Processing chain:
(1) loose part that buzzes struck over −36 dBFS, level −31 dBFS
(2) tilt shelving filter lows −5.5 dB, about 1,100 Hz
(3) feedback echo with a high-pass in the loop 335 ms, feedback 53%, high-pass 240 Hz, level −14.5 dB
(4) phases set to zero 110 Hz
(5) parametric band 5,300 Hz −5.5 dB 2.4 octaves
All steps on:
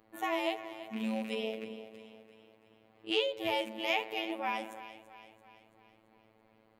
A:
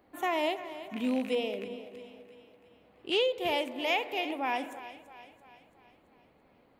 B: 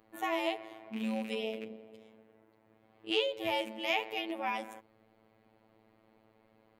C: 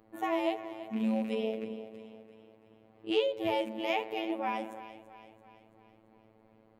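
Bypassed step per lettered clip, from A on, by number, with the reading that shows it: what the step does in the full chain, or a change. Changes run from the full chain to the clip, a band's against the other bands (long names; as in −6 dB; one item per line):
4, 500 Hz band +2.0 dB
3, change in momentary loudness spread −2 LU
2, 4 kHz band −7.5 dB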